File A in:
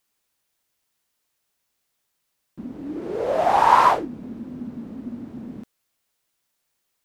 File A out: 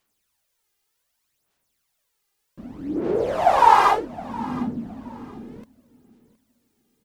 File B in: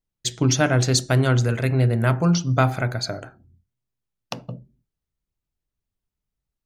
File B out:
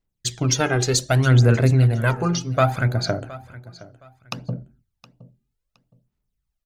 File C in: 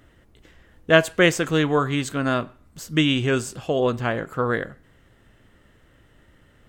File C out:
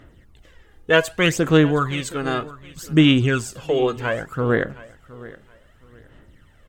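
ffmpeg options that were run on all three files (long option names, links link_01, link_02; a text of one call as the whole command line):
ffmpeg -i in.wav -filter_complex "[0:a]aphaser=in_gain=1:out_gain=1:delay=2.5:decay=0.59:speed=0.65:type=sinusoidal,asplit=2[link_01][link_02];[link_02]aecho=0:1:717|1434:0.112|0.0281[link_03];[link_01][link_03]amix=inputs=2:normalize=0,volume=-1dB" out.wav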